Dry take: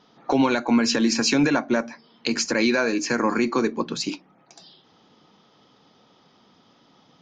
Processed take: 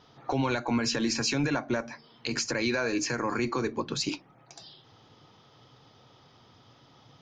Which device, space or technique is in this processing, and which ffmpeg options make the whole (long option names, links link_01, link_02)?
car stereo with a boomy subwoofer: -af "lowshelf=frequency=150:width_type=q:width=3:gain=7,alimiter=limit=-18.5dB:level=0:latency=1:release=169"